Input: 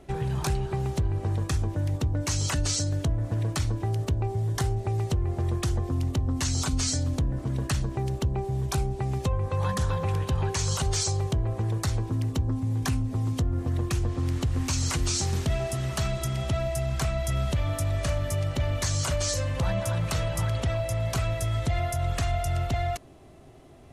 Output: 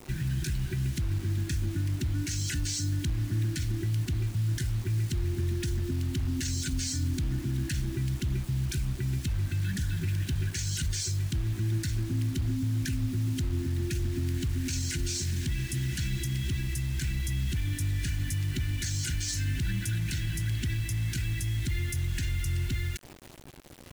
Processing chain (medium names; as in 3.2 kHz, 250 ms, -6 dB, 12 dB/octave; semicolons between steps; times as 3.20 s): FFT band-reject 380–1400 Hz; peak limiter -25 dBFS, peak gain reduction 8.5 dB; bit crusher 8-bit; trim +2 dB